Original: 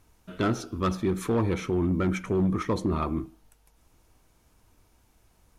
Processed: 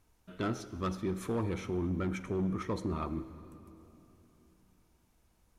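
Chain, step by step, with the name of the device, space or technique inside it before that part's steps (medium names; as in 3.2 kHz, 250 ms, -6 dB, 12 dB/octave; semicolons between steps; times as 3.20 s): saturated reverb return (on a send at -12 dB: reverberation RT60 3.1 s, pre-delay 39 ms + saturation -21.5 dBFS, distortion -15 dB); on the sum: trim -8 dB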